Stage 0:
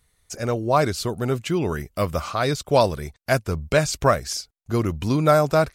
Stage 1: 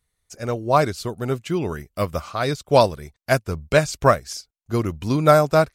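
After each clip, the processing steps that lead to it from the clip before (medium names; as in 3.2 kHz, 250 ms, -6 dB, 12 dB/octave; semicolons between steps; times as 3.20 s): upward expansion 1.5:1, over -39 dBFS; trim +3.5 dB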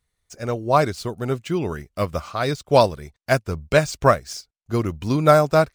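median filter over 3 samples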